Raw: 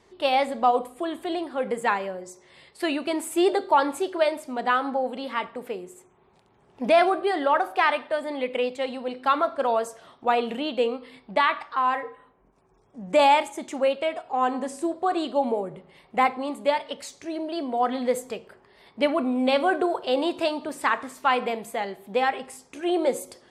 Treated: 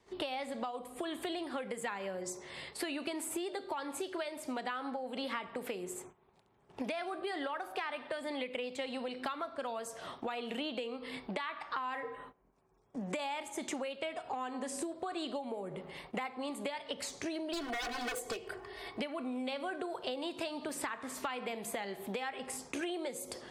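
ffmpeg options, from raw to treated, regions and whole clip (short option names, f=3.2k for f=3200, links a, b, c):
-filter_complex "[0:a]asettb=1/sr,asplit=3[a][b][c];[a]atrim=end=17.534[d];[b]atrim=start=17.53:end=19,asetpts=PTS-STARTPTS,afade=t=in:d=0.004:c=qsin,afade=t=out:st=1.466:d=0.004:c=qsin,aeval=exprs='0.0447*(abs(mod(val(0)/0.0447+3,4)-2)-1)':c=same,bandreject=f=260:w=7.8,aecho=1:1:2.7:0.77,atrim=end_sample=64827[e];[c]atrim=start=18.996[f];[d][e]acrossfade=d=0.004:c1=hsin:c2=qsin[g];[g][f]acrossfade=d=0.004:c1=qsin:c2=hsin,acompressor=threshold=-34dB:ratio=10,agate=range=-15dB:threshold=-57dB:ratio=16:detection=peak,acrossover=split=220|1600[h][i][j];[h]acompressor=threshold=-57dB:ratio=4[k];[i]acompressor=threshold=-45dB:ratio=4[l];[j]acompressor=threshold=-46dB:ratio=4[m];[k][l][m]amix=inputs=3:normalize=0,volume=6dB"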